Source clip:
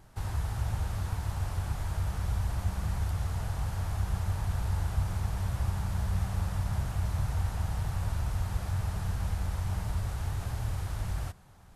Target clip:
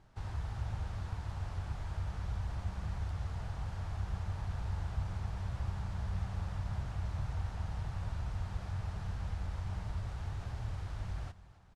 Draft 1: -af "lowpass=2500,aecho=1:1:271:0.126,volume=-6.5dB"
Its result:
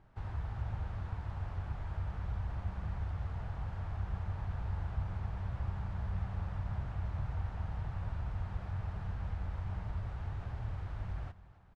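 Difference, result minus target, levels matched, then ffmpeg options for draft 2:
4,000 Hz band −6.5 dB
-af "lowpass=5400,aecho=1:1:271:0.126,volume=-6.5dB"

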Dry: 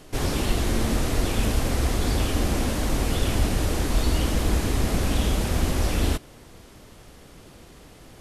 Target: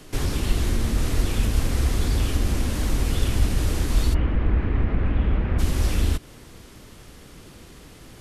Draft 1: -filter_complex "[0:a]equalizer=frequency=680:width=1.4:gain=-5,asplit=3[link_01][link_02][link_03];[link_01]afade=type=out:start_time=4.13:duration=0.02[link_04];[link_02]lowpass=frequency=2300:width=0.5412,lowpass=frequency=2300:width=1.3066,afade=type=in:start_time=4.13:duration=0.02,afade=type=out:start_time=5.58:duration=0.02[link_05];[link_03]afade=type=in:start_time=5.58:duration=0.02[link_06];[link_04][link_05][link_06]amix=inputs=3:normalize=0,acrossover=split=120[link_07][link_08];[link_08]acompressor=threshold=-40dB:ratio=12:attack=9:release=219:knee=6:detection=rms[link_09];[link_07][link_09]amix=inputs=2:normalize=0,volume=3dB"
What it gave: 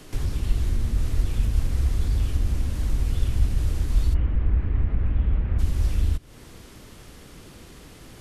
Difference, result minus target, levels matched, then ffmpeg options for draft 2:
downward compressor: peak gain reduction +10 dB
-filter_complex "[0:a]equalizer=frequency=680:width=1.4:gain=-5,asplit=3[link_01][link_02][link_03];[link_01]afade=type=out:start_time=4.13:duration=0.02[link_04];[link_02]lowpass=frequency=2300:width=0.5412,lowpass=frequency=2300:width=1.3066,afade=type=in:start_time=4.13:duration=0.02,afade=type=out:start_time=5.58:duration=0.02[link_05];[link_03]afade=type=in:start_time=5.58:duration=0.02[link_06];[link_04][link_05][link_06]amix=inputs=3:normalize=0,acrossover=split=120[link_07][link_08];[link_08]acompressor=threshold=-29dB:ratio=12:attack=9:release=219:knee=6:detection=rms[link_09];[link_07][link_09]amix=inputs=2:normalize=0,volume=3dB"

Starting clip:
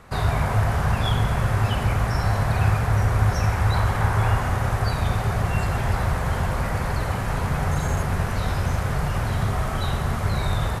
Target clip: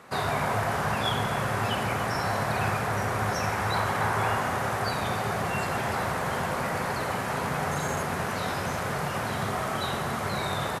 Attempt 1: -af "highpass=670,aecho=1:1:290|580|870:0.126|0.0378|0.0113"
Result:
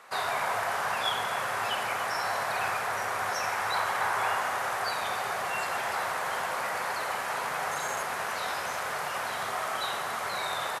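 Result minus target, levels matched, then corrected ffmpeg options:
250 Hz band −13.5 dB
-af "highpass=210,aecho=1:1:290|580|870:0.126|0.0378|0.0113"

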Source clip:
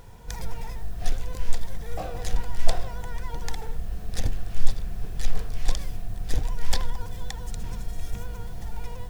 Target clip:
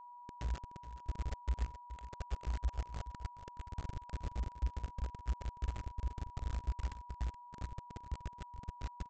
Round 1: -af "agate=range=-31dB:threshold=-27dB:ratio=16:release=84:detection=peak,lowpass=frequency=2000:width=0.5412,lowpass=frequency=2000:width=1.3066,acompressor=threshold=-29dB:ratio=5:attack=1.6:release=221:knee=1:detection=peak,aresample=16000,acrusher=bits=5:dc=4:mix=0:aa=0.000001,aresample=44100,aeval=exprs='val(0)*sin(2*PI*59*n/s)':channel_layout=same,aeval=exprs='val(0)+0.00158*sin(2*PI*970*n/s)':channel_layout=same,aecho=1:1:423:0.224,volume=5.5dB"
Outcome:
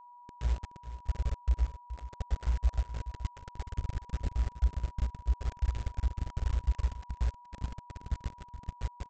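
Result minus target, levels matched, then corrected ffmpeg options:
downward compressor: peak gain reduction −8 dB
-af "agate=range=-31dB:threshold=-27dB:ratio=16:release=84:detection=peak,lowpass=frequency=2000:width=0.5412,lowpass=frequency=2000:width=1.3066,acompressor=threshold=-39dB:ratio=5:attack=1.6:release=221:knee=1:detection=peak,aresample=16000,acrusher=bits=5:dc=4:mix=0:aa=0.000001,aresample=44100,aeval=exprs='val(0)*sin(2*PI*59*n/s)':channel_layout=same,aeval=exprs='val(0)+0.00158*sin(2*PI*970*n/s)':channel_layout=same,aecho=1:1:423:0.224,volume=5.5dB"

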